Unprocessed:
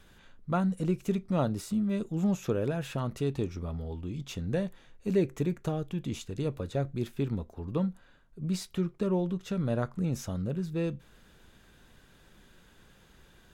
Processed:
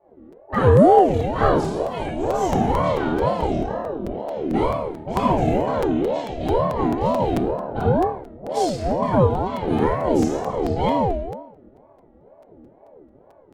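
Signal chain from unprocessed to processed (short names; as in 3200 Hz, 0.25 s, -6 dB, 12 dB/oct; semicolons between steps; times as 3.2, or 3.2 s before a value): octaver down 2 oct, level -5 dB; low-pass opened by the level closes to 390 Hz, open at -24.5 dBFS; HPF 42 Hz 12 dB/oct; notches 50/100/150/200/250 Hz; flutter echo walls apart 4.6 m, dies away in 0.74 s; shoebox room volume 180 m³, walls mixed, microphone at 1.7 m; envelope flanger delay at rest 3.7 ms, full sweep at -1 dBFS; crackling interface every 0.22 s, samples 256, repeat, from 0.32; ring modulator with a swept carrier 450 Hz, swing 40%, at 2.1 Hz; gain +5.5 dB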